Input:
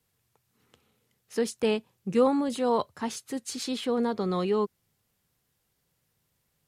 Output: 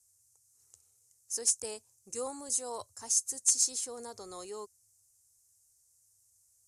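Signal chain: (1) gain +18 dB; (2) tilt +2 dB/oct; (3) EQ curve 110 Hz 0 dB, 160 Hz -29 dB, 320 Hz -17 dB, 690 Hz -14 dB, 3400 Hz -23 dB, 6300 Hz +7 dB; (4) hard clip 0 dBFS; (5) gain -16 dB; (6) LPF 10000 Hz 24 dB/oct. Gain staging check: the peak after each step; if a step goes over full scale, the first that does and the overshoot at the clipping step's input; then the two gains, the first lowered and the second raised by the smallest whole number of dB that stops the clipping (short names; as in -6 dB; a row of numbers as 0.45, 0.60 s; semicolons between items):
+6.0, +5.0, +7.5, 0.0, -16.0, -14.5 dBFS; step 1, 7.5 dB; step 1 +10 dB, step 5 -8 dB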